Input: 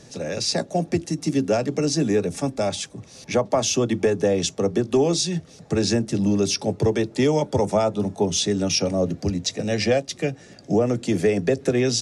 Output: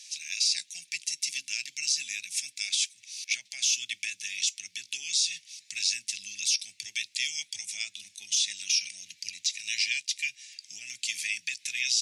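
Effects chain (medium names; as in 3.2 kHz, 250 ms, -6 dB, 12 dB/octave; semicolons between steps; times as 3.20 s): elliptic high-pass 2.3 kHz, stop band 50 dB; peak limiter -21.5 dBFS, peak gain reduction 10.5 dB; trim +6 dB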